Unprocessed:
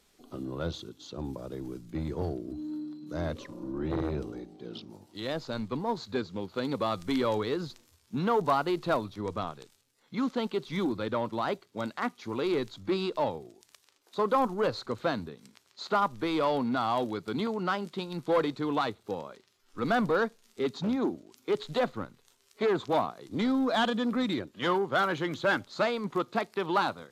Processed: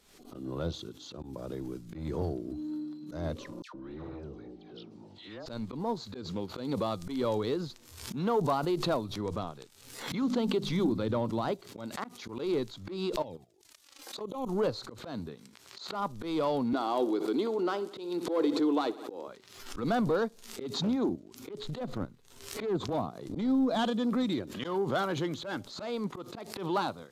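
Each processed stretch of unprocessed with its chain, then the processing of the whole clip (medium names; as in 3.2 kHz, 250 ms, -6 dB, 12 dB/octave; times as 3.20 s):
3.62–5.46 s: low-pass 4.9 kHz + compression 2:1, threshold -48 dBFS + phase dispersion lows, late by 123 ms, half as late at 1.4 kHz
10.22–11.52 s: bass shelf 220 Hz +7 dB + hum notches 50/100/150/200/250/300 Hz
13.22–14.49 s: touch-sensitive flanger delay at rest 3.9 ms, full sweep at -25 dBFS + treble shelf 2 kHz +3.5 dB + level held to a coarse grid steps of 14 dB
16.73–19.28 s: resonant high-pass 330 Hz, resonance Q 3.6 + bass shelf 420 Hz -5 dB + feedback delay 62 ms, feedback 55%, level -18 dB
21.09–23.79 s: bass shelf 380 Hz +9.5 dB + compression 2.5:1, threshold -24 dBFS + transient shaper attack -11 dB, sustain -6 dB
whole clip: dynamic bell 1.8 kHz, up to -8 dB, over -44 dBFS, Q 0.73; slow attack 159 ms; swell ahead of each attack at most 68 dB/s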